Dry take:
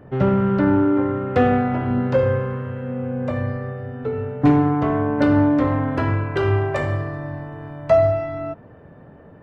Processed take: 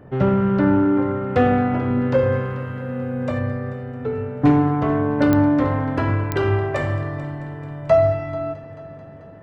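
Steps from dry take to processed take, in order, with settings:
0:02.32–0:03.39: high-shelf EQ 3,800 Hz +8.5 dB
echo machine with several playback heads 219 ms, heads first and second, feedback 60%, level −19.5 dB
digital clicks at 0:05.33/0:06.32, −7 dBFS

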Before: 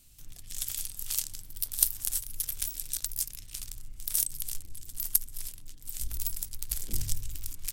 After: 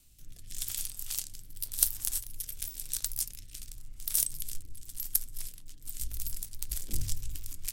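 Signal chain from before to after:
rotating-speaker cabinet horn 0.9 Hz, later 6.7 Hz, at 0:04.61
flanger 0.86 Hz, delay 2.1 ms, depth 8.4 ms, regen −82%
level +5 dB

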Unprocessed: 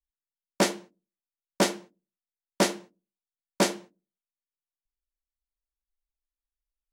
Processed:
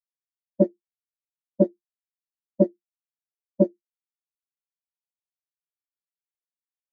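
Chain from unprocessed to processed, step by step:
every bin expanded away from the loudest bin 4 to 1
level +3 dB

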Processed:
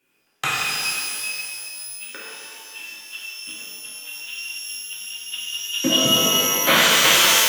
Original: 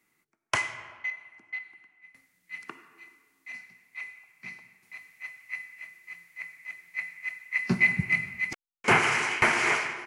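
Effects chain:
gliding playback speed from 122% → 147%
reverb with rising layers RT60 2 s, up +12 semitones, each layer −2 dB, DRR −7 dB

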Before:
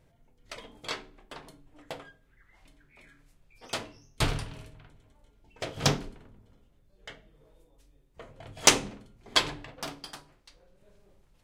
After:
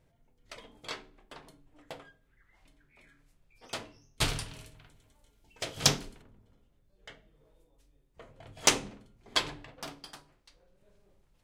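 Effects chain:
0:04.21–0:06.22: parametric band 12,000 Hz +11.5 dB 2.9 octaves
level −4.5 dB

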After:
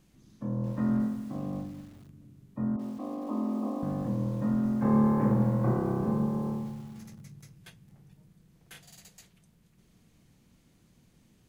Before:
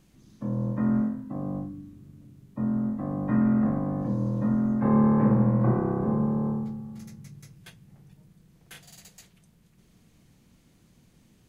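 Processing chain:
0:02.76–0:03.83: linear-phase brick-wall band-pass 220–1,300 Hz
feedback echo at a low word length 218 ms, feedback 35%, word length 7 bits, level −14 dB
level −3 dB

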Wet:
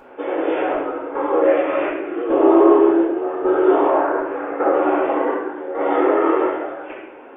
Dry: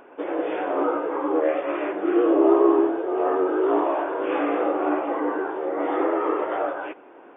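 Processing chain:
0:03.87–0:04.73: high shelf with overshoot 2,200 Hz −9 dB, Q 1.5
square-wave tremolo 0.87 Hz, depth 65%, duty 65%
convolution reverb RT60 0.75 s, pre-delay 4 ms, DRR −4 dB

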